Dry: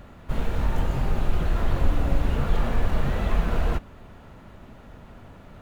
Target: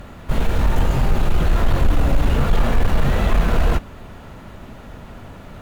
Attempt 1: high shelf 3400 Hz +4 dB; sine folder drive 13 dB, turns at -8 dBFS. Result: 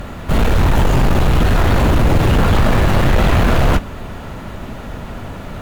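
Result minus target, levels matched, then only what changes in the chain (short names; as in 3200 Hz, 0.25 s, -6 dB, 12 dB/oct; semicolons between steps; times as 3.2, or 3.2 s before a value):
sine folder: distortion +20 dB
change: sine folder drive 4 dB, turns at -8 dBFS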